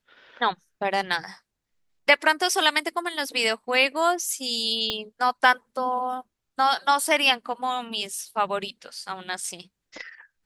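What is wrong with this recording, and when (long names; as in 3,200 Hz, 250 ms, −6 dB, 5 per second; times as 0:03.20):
0:04.90: click −12 dBFS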